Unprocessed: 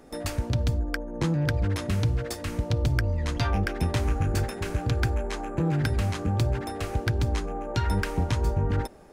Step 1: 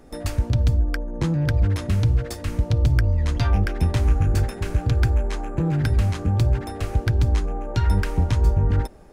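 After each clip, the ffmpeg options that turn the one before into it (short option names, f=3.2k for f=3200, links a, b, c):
-af "lowshelf=f=110:g=10.5"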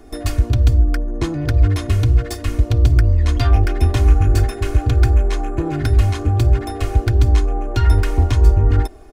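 -filter_complex "[0:a]aecho=1:1:2.8:0.92,acrossover=split=1100[a][b];[b]volume=24dB,asoftclip=hard,volume=-24dB[c];[a][c]amix=inputs=2:normalize=0,volume=2.5dB"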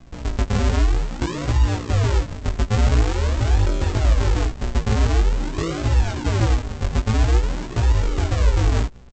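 -af "aresample=16000,acrusher=samples=34:mix=1:aa=0.000001:lfo=1:lforange=34:lforate=0.47,aresample=44100,alimiter=limit=-8.5dB:level=0:latency=1:release=64,flanger=delay=16:depth=4.5:speed=0.66"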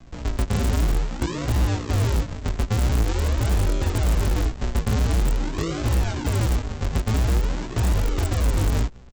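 -filter_complex "[0:a]asplit=2[a][b];[b]aeval=exprs='(mod(4.73*val(0)+1,2)-1)/4.73':c=same,volume=-7dB[c];[a][c]amix=inputs=2:normalize=0,acrossover=split=330|3000[d][e][f];[e]acompressor=threshold=-25dB:ratio=6[g];[d][g][f]amix=inputs=3:normalize=0,volume=-4dB"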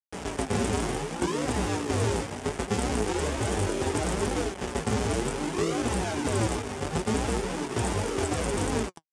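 -af "acrusher=bits=5:mix=0:aa=0.000001,flanger=delay=3.6:depth=6.1:regen=53:speed=0.69:shape=triangular,highpass=110,equalizer=f=120:t=q:w=4:g=-8,equalizer=f=410:t=q:w=4:g=7,equalizer=f=820:t=q:w=4:g=4,equalizer=f=4.1k:t=q:w=4:g=-5,equalizer=f=9.1k:t=q:w=4:g=7,lowpass=f=9.4k:w=0.5412,lowpass=f=9.4k:w=1.3066,volume=3dB"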